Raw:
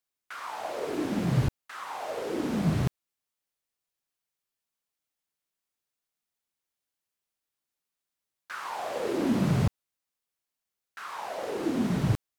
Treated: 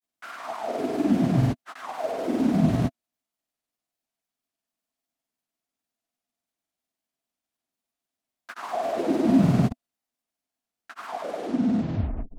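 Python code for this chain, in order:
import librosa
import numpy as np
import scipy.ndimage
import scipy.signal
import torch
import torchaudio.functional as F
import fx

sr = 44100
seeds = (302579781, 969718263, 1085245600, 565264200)

y = fx.tape_stop_end(x, sr, length_s=1.3)
y = fx.granulator(y, sr, seeds[0], grain_ms=100.0, per_s=20.0, spray_ms=100.0, spread_st=0)
y = fx.small_body(y, sr, hz=(250.0, 670.0), ring_ms=35, db=12)
y = F.gain(torch.from_numpy(y), 1.0).numpy()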